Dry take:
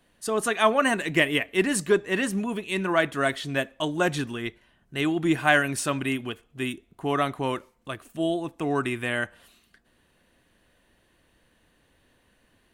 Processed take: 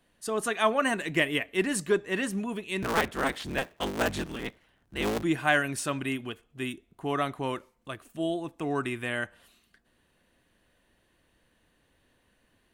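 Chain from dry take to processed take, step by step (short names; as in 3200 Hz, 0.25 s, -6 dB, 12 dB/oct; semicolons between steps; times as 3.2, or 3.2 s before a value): 2.82–5.23 cycle switcher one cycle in 3, inverted; gain -4 dB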